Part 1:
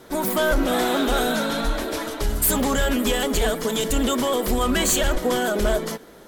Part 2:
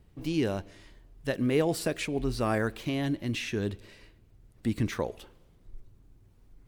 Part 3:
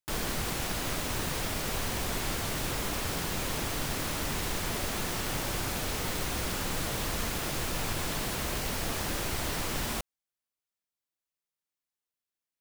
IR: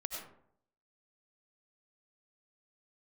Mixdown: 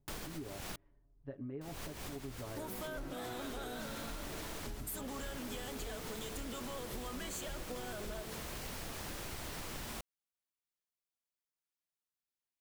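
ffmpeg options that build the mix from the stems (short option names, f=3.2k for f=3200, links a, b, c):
-filter_complex "[0:a]adelay=2450,volume=-13.5dB[a];[1:a]lowpass=1.1k,bandreject=f=470:w=12,aecho=1:1:7.1:0.67,volume=-15.5dB,asplit=2[b][c];[2:a]volume=-6dB,asplit=3[d][e][f];[d]atrim=end=0.76,asetpts=PTS-STARTPTS,afade=t=out:st=0.756:d=0.004:c=hsin[g];[e]atrim=start=0.76:end=1.61,asetpts=PTS-STARTPTS,volume=0[h];[f]atrim=start=1.61,asetpts=PTS-STARTPTS,afade=t=in:d=0.004:c=hsin[i];[g][h][i]concat=n=3:v=0:a=1[j];[c]apad=whole_len=555743[k];[j][k]sidechaincompress=threshold=-47dB:ratio=10:attack=5.1:release=253[l];[a][b][l]amix=inputs=3:normalize=0,acompressor=threshold=-40dB:ratio=6"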